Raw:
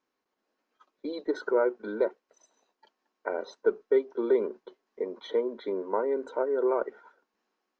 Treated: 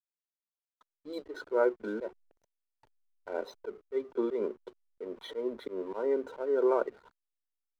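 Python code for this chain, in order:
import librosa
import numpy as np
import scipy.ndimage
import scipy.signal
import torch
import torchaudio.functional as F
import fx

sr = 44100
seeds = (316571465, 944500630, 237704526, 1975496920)

y = fx.auto_swell(x, sr, attack_ms=137.0)
y = fx.backlash(y, sr, play_db=-48.5)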